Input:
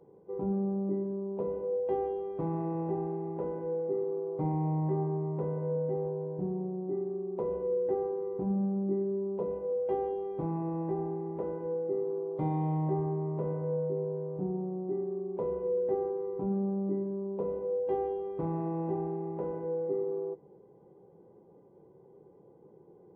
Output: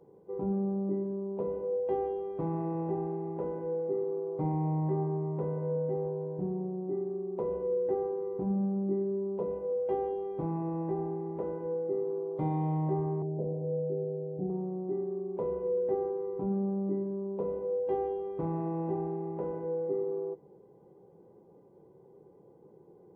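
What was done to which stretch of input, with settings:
13.22–14.5 elliptic low-pass 760 Hz

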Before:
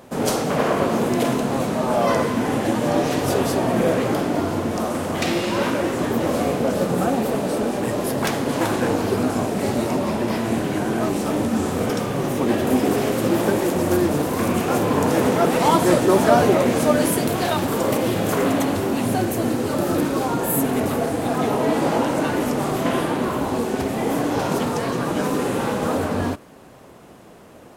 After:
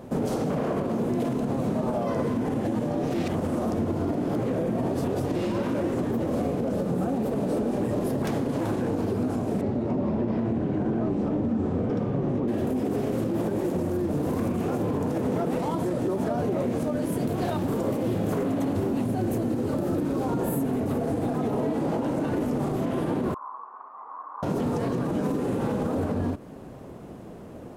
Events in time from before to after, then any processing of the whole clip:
3.14–5.36 reverse
9.61–12.48 tape spacing loss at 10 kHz 22 dB
23.34–24.43 Butterworth band-pass 1100 Hz, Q 4.4
whole clip: tilt shelf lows +7 dB, about 710 Hz; compressor, threshold -21 dBFS; limiter -18.5 dBFS

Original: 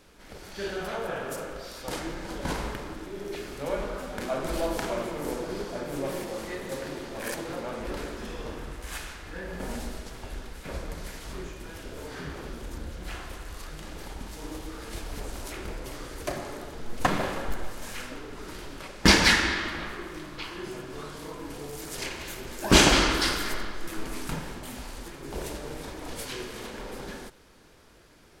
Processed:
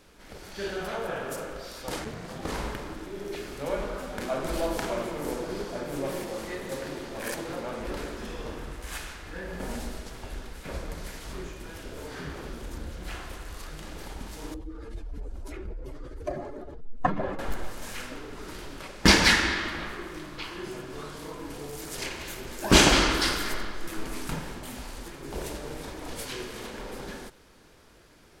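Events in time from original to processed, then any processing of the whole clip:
2.04–2.51 ring modulator 100 Hz -> 270 Hz
14.54–17.39 spectral contrast raised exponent 1.8

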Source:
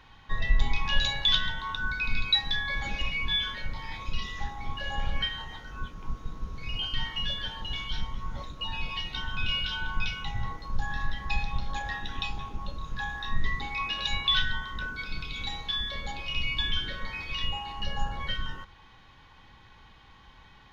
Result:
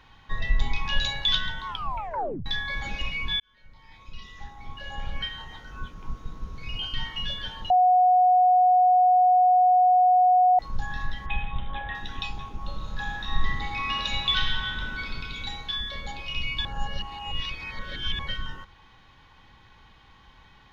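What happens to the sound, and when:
1.67 tape stop 0.79 s
3.4–5.76 fade in
7.7–10.59 bleep 731 Hz -15 dBFS
11.26–11.95 careless resampling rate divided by 6×, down none, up filtered
12.57–15.06 reverb throw, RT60 2.3 s, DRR 0 dB
16.65–18.19 reverse

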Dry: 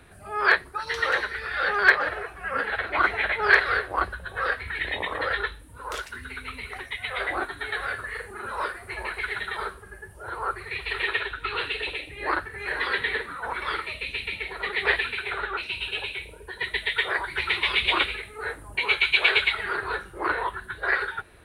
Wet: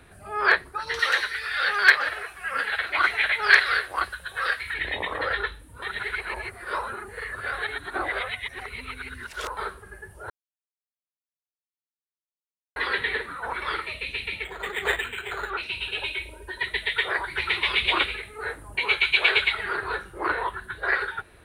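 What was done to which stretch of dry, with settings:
0.99–4.74 tilt shelf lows -9 dB, about 1400 Hz
5.82–9.57 reverse
10.3–12.76 mute
14.44–15.5 decimation joined by straight lines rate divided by 8×
16.02–16.63 comb 3.2 ms, depth 77%

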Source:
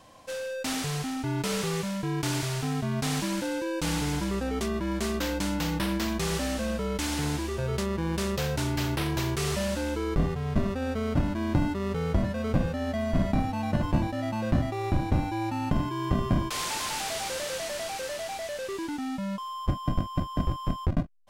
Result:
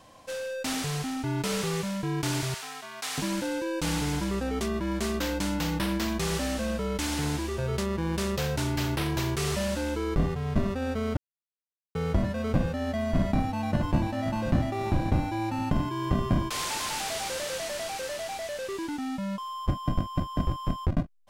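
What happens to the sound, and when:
2.54–3.18 HPF 930 Hz
11.17–11.95 mute
13.51–14.57 echo throw 0.53 s, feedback 45%, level -11 dB

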